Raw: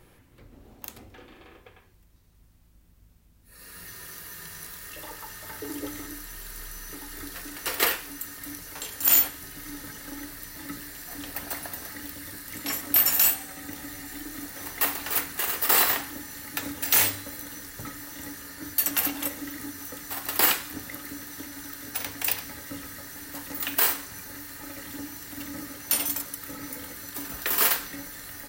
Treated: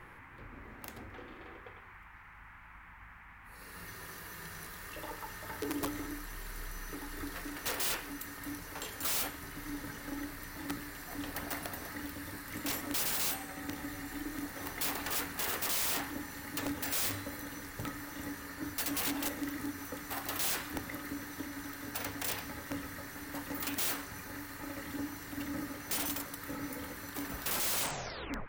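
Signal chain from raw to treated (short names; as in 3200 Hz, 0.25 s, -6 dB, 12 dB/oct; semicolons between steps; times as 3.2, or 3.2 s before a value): tape stop at the end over 1.08 s; high shelf 3000 Hz -9.5 dB; band noise 830–2200 Hz -55 dBFS; wrapped overs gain 27.5 dB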